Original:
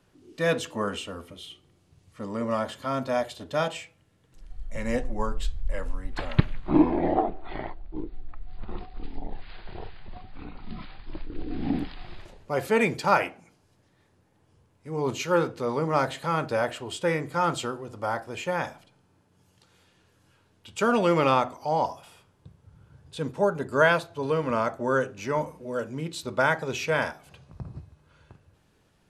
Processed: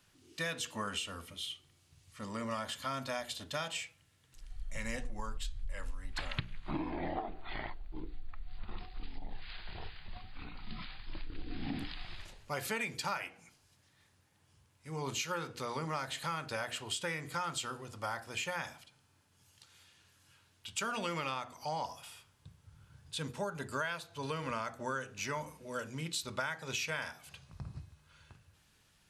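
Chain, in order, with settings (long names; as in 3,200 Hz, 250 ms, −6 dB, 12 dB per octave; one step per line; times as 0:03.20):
guitar amp tone stack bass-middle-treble 5-5-5
mains-hum notches 60/120/180/240/300/360/420/480 Hz
downward compressor 10 to 1, threshold −43 dBFS, peak gain reduction 15.5 dB
level +10 dB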